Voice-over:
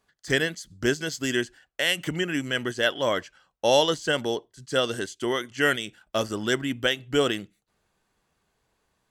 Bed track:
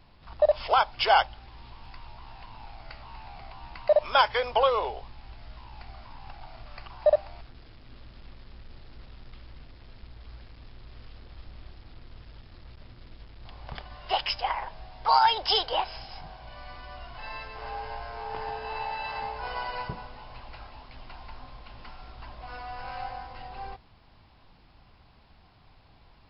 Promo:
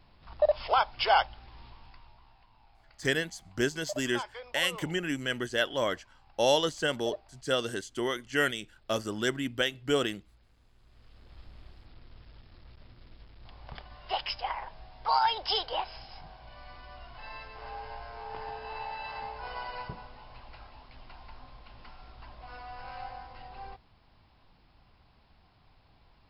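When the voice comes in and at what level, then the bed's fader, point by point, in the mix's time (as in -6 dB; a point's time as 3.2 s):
2.75 s, -4.5 dB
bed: 1.63 s -3 dB
2.47 s -17 dB
10.71 s -17 dB
11.35 s -5 dB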